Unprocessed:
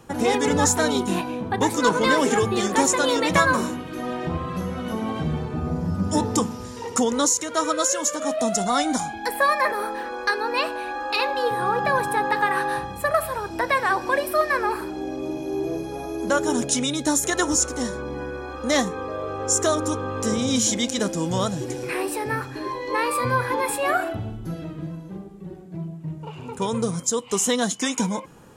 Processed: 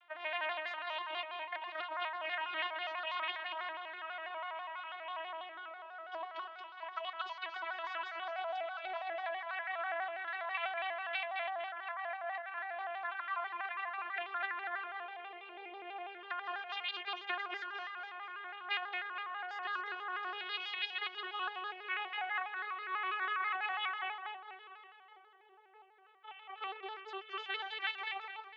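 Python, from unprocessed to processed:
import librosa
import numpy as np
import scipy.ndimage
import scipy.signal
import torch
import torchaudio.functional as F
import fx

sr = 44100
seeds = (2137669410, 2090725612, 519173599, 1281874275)

y = fx.vocoder_glide(x, sr, note=64, semitones=4)
y = scipy.signal.sosfilt(scipy.signal.butter(4, 680.0, 'highpass', fs=sr, output='sos'), y)
y = fx.over_compress(y, sr, threshold_db=-31.0, ratio=-1.0)
y = scipy.signal.sosfilt(scipy.signal.butter(8, 3200.0, 'lowpass', fs=sr, output='sos'), y)
y = np.diff(y, prepend=0.0)
y = fx.echo_feedback(y, sr, ms=227, feedback_pct=37, wet_db=-4.5)
y = fx.vibrato_shape(y, sr, shape='square', rate_hz=6.1, depth_cents=100.0)
y = y * 10.0 ** (8.0 / 20.0)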